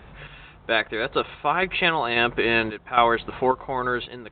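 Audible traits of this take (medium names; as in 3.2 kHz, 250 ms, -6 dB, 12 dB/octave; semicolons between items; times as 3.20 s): random-step tremolo 3.7 Hz, depth 75%; µ-law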